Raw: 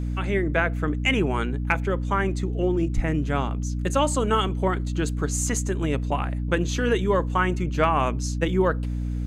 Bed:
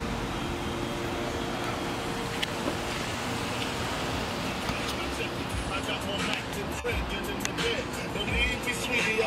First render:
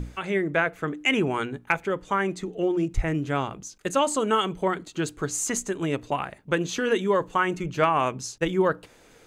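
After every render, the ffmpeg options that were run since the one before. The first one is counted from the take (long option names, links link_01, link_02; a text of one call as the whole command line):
ffmpeg -i in.wav -af "bandreject=frequency=60:width_type=h:width=6,bandreject=frequency=120:width_type=h:width=6,bandreject=frequency=180:width_type=h:width=6,bandreject=frequency=240:width_type=h:width=6,bandreject=frequency=300:width_type=h:width=6" out.wav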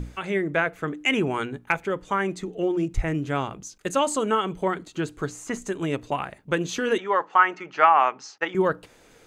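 ffmpeg -i in.wav -filter_complex "[0:a]asettb=1/sr,asplit=3[link_01][link_02][link_03];[link_01]atrim=end=4.254[link_04];[link_02]atrim=start=4.25:end=5.62,asetpts=PTS-STARTPTS,afade=type=in:duration=0.004:curve=qsin,afade=type=out:start_time=1.366:duration=0.004:curve=qsin,acrossover=split=2600[link_05][link_06];[link_06]acompressor=threshold=-41dB:ratio=4:attack=1:release=60[link_07];[link_05][link_07]amix=inputs=2:normalize=0[link_08];[link_03]atrim=start=5.616[link_09];[link_04][link_08]acrossfade=duration=0.004:curve1=hsin:curve2=qsin[link_10];[link_10][link_09]acrossfade=duration=0.004:curve1=qsin:curve2=hsin,asettb=1/sr,asplit=3[link_11][link_12][link_13];[link_11]atrim=end=6.984[link_14];[link_12]atrim=start=6.98:end=8.55,asetpts=PTS-STARTPTS,afade=type=in:duration=0.004:curve=qsin,afade=type=out:start_time=1.566:duration=0.004:curve=qsin,highpass=480,equalizer=frequency=500:width_type=q:width=4:gain=-3,equalizer=frequency=820:width_type=q:width=4:gain=9,equalizer=frequency=1300:width_type=q:width=4:gain=8,equalizer=frequency=1900:width_type=q:width=4:gain=6,equalizer=frequency=3700:width_type=q:width=4:gain=-6,lowpass=frequency=5200:width=0.5412,lowpass=frequency=5200:width=1.3066[link_15];[link_13]atrim=start=8.546[link_16];[link_14][link_15]acrossfade=duration=0.004:curve1=hsin:curve2=qsin[link_17];[link_17][link_16]acrossfade=duration=0.004:curve1=qsin:curve2=hsin" out.wav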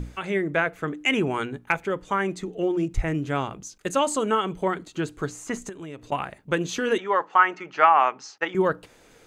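ffmpeg -i in.wav -filter_complex "[0:a]asettb=1/sr,asplit=3[link_01][link_02][link_03];[link_01]atrim=end=5.694[link_04];[link_02]atrim=start=5.69:end=6.12,asetpts=PTS-STARTPTS,afade=type=in:duration=0.004:curve=qsin,afade=type=out:start_time=0.426:duration=0.004:curve=qsin,acompressor=threshold=-39dB:ratio=2.5:attack=3.2:release=140:knee=1:detection=peak[link_05];[link_03]atrim=start=6.116[link_06];[link_04][link_05]acrossfade=duration=0.004:curve1=hsin:curve2=qsin[link_07];[link_07][link_06]acrossfade=duration=0.004:curve1=qsin:curve2=hsin" out.wav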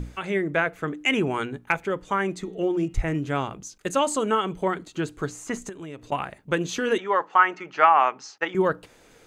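ffmpeg -i in.wav -filter_complex "[0:a]asplit=3[link_01][link_02][link_03];[link_01]afade=type=out:start_time=2.43:duration=0.02[link_04];[link_02]bandreject=frequency=189.3:width_type=h:width=4,bandreject=frequency=378.6:width_type=h:width=4,bandreject=frequency=567.9:width_type=h:width=4,bandreject=frequency=757.2:width_type=h:width=4,bandreject=frequency=946.5:width_type=h:width=4,bandreject=frequency=1135.8:width_type=h:width=4,bandreject=frequency=1325.1:width_type=h:width=4,bandreject=frequency=1514.4:width_type=h:width=4,bandreject=frequency=1703.7:width_type=h:width=4,bandreject=frequency=1893:width_type=h:width=4,bandreject=frequency=2082.3:width_type=h:width=4,bandreject=frequency=2271.6:width_type=h:width=4,bandreject=frequency=2460.9:width_type=h:width=4,bandreject=frequency=2650.2:width_type=h:width=4,bandreject=frequency=2839.5:width_type=h:width=4,bandreject=frequency=3028.8:width_type=h:width=4,bandreject=frequency=3218.1:width_type=h:width=4,bandreject=frequency=3407.4:width_type=h:width=4,bandreject=frequency=3596.7:width_type=h:width=4,bandreject=frequency=3786:width_type=h:width=4,bandreject=frequency=3975.3:width_type=h:width=4,bandreject=frequency=4164.6:width_type=h:width=4,bandreject=frequency=4353.9:width_type=h:width=4,afade=type=in:start_time=2.43:duration=0.02,afade=type=out:start_time=3.18:duration=0.02[link_05];[link_03]afade=type=in:start_time=3.18:duration=0.02[link_06];[link_04][link_05][link_06]amix=inputs=3:normalize=0" out.wav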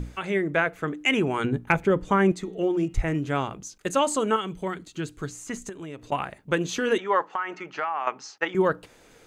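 ffmpeg -i in.wav -filter_complex "[0:a]asettb=1/sr,asplit=3[link_01][link_02][link_03];[link_01]atrim=end=1.444[link_04];[link_02]atrim=start=1.44:end=2.32,asetpts=PTS-STARTPTS,afade=type=in:duration=0.004:curve=qsin,afade=type=out:start_time=0.876:duration=0.004:curve=qsin,lowshelf=frequency=420:gain=11.5[link_05];[link_03]atrim=start=2.316[link_06];[link_04][link_05]acrossfade=duration=0.004:curve1=hsin:curve2=qsin[link_07];[link_07][link_06]acrossfade=duration=0.004:curve1=qsin:curve2=hsin,asettb=1/sr,asplit=3[link_08][link_09][link_10];[link_08]atrim=end=4.364[link_11];[link_09]atrim=start=4.36:end=5.69,asetpts=PTS-STARTPTS,afade=type=in:duration=0.004:curve=qsin,afade=type=out:start_time=1.326:duration=0.004:curve=qsin,equalizer=frequency=730:width_type=o:width=2.7:gain=-7.5[link_12];[link_10]atrim=start=5.686[link_13];[link_11][link_12]acrossfade=duration=0.004:curve1=hsin:curve2=qsin[link_14];[link_14][link_13]acrossfade=duration=0.004:curve1=qsin:curve2=hsin,asettb=1/sr,asplit=3[link_15][link_16][link_17];[link_15]atrim=end=7.344[link_18];[link_16]atrim=start=7.34:end=8.07,asetpts=PTS-STARTPTS,afade=type=in:duration=0.004:curve=qsin,afade=type=out:start_time=0.726:duration=0.004:curve=qsin,acompressor=threshold=-26dB:ratio=4:attack=3.2:release=140:knee=1:detection=peak[link_19];[link_17]atrim=start=8.066[link_20];[link_18][link_19]acrossfade=duration=0.004:curve1=hsin:curve2=qsin[link_21];[link_21][link_20]acrossfade=duration=0.004:curve1=qsin:curve2=hsin" out.wav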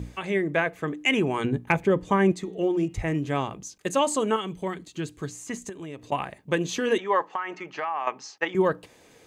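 ffmpeg -i in.wav -af "highpass=62,bandreject=frequency=1400:width=5.8" out.wav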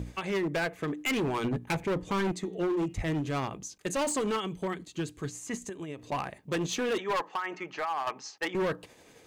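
ffmpeg -i in.wav -af "tremolo=f=11:d=0.32,volume=26dB,asoftclip=hard,volume=-26dB" out.wav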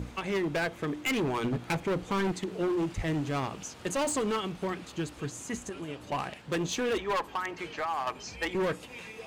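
ffmpeg -i in.wav -i bed.wav -filter_complex "[1:a]volume=-18dB[link_01];[0:a][link_01]amix=inputs=2:normalize=0" out.wav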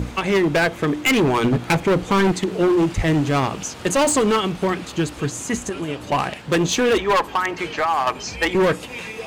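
ffmpeg -i in.wav -af "volume=12dB" out.wav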